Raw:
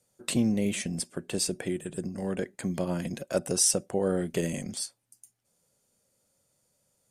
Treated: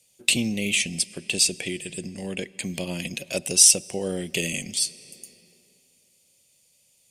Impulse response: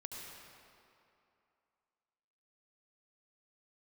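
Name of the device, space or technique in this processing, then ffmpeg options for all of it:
compressed reverb return: -filter_complex "[0:a]asettb=1/sr,asplit=3[link_01][link_02][link_03];[link_01]atrim=end=0.814[link_04];[link_02]atrim=start=0.81:end=2.61,asetpts=PTS-STARTPTS,afade=type=in:duration=0.004:curve=qsin,afade=type=out:start_time=1.796:duration=0.004:curve=qsin,lowpass=12000[link_05];[link_03]atrim=start=2.606[link_06];[link_04][link_05]acrossfade=duration=0.004:curve1=hsin:curve2=qsin[link_07];[link_07][link_06]acrossfade=duration=0.004:curve1=qsin:curve2=hsin,asplit=2[link_08][link_09];[1:a]atrim=start_sample=2205[link_10];[link_09][link_10]afir=irnorm=-1:irlink=0,acompressor=threshold=-40dB:ratio=5,volume=-8dB[link_11];[link_08][link_11]amix=inputs=2:normalize=0,highshelf=frequency=1900:width_type=q:width=3:gain=10,volume=-1.5dB"

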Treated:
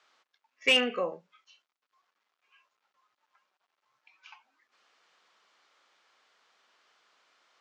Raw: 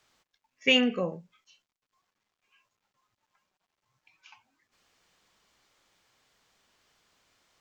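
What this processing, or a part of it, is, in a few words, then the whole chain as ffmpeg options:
intercom: -af "highpass=430,lowpass=5000,equalizer=frequency=1300:width_type=o:width=0.52:gain=4.5,asoftclip=type=tanh:threshold=-17dB,volume=2dB"

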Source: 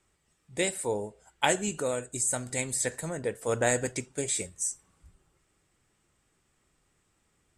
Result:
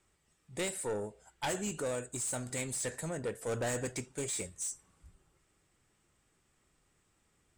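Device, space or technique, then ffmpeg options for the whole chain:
saturation between pre-emphasis and de-emphasis: -af "highshelf=frequency=11000:gain=10,asoftclip=type=tanh:threshold=-28.5dB,highshelf=frequency=11000:gain=-10,volume=-1.5dB"

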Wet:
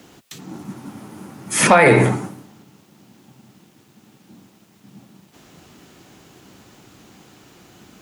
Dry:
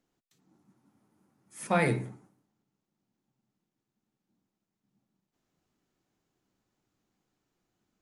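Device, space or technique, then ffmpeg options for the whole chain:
mastering chain: -filter_complex "[0:a]highpass=57,equalizer=frequency=2900:width_type=o:width=0.7:gain=3,acrossover=split=420|1000|2400|7500[link_01][link_02][link_03][link_04][link_05];[link_01]acompressor=threshold=-44dB:ratio=4[link_06];[link_02]acompressor=threshold=-29dB:ratio=4[link_07];[link_03]acompressor=threshold=-33dB:ratio=4[link_08];[link_04]acompressor=threshold=-53dB:ratio=4[link_09];[link_05]acompressor=threshold=-60dB:ratio=4[link_10];[link_06][link_07][link_08][link_09][link_10]amix=inputs=5:normalize=0,acompressor=threshold=-34dB:ratio=2.5,asoftclip=type=hard:threshold=-27dB,alimiter=level_in=34.5dB:limit=-1dB:release=50:level=0:latency=1,volume=-2dB"

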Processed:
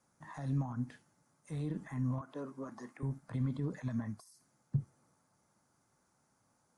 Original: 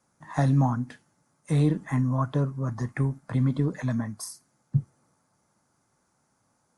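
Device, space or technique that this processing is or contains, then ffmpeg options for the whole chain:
de-esser from a sidechain: -filter_complex "[0:a]asettb=1/sr,asplit=3[link_01][link_02][link_03];[link_01]atrim=end=2.214[link_04];[link_02]atrim=start=2.21:end=3.03,asetpts=PTS-STARTPTS,afade=type=in:duration=0.004:curve=qsin,afade=type=out:start_time=0.816:duration=0.004:curve=qsin,highpass=frequency=240:width=0.5412,highpass=frequency=240:width=1.3066[link_05];[link_03]atrim=start=3.026[link_06];[link_04][link_05]acrossfade=duration=0.004:curve1=hsin:curve2=qsin[link_07];[link_07][link_06]acrossfade=duration=0.004:curve1=qsin:curve2=hsin,asplit=2[link_08][link_09];[link_09]highpass=frequency=5900:poles=1,apad=whole_len=298821[link_10];[link_08][link_10]sidechaincompress=threshold=-52dB:ratio=16:attack=0.83:release=92,volume=-4dB"

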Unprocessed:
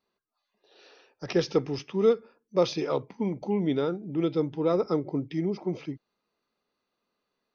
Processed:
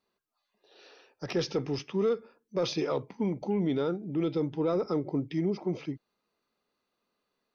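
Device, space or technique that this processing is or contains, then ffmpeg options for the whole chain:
soft clipper into limiter: -af "asoftclip=type=tanh:threshold=-13.5dB,alimiter=limit=-21dB:level=0:latency=1:release=19"

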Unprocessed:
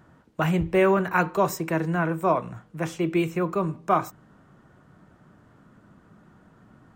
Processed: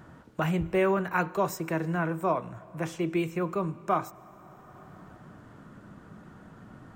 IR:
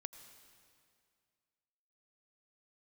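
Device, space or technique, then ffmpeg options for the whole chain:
ducked reverb: -filter_complex "[0:a]asplit=3[link_01][link_02][link_03];[1:a]atrim=start_sample=2205[link_04];[link_02][link_04]afir=irnorm=-1:irlink=0[link_05];[link_03]apad=whole_len=306808[link_06];[link_05][link_06]sidechaincompress=threshold=-39dB:ratio=12:attack=16:release=656,volume=13dB[link_07];[link_01][link_07]amix=inputs=2:normalize=0,volume=-6.5dB"

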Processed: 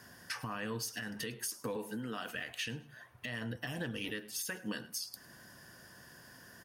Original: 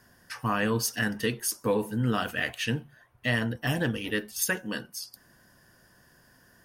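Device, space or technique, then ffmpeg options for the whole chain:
broadcast voice chain: -filter_complex "[0:a]highpass=74,deesser=0.4,acompressor=threshold=-37dB:ratio=5,equalizer=frequency=4300:width_type=o:width=2.8:gain=3,alimiter=level_in=6.5dB:limit=-24dB:level=0:latency=1:release=206,volume=-6.5dB,asettb=1/sr,asplit=3[link_01][link_02][link_03];[link_01]atrim=end=1.764[link_04];[link_02]atrim=start=1.76:end=2.35,asetpts=PTS-STARTPTS,afade=type=in:duration=0.004:curve=qsin,afade=type=out:start_time=0.586:duration=0.004:curve=qsin,highpass=220[link_05];[link_03]atrim=start=2.346[link_06];[link_04][link_05]acrossfade=duration=0.004:curve1=hsin:curve2=qsin[link_07];[link_07][link_06]acrossfade=duration=0.004:curve1=qsin:curve2=hsin,aecho=1:1:105|210:0.1|0.028,volume=3dB"

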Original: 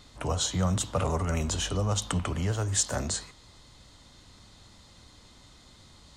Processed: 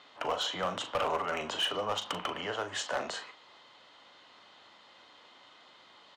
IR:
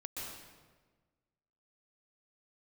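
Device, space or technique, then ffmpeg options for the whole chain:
megaphone: -filter_complex "[0:a]highpass=580,lowpass=2500,equalizer=frequency=3000:width_type=o:width=0.21:gain=8,asoftclip=type=hard:threshold=-29dB,asplit=2[link_01][link_02];[link_02]adelay=39,volume=-10dB[link_03];[link_01][link_03]amix=inputs=2:normalize=0,volume=4dB"

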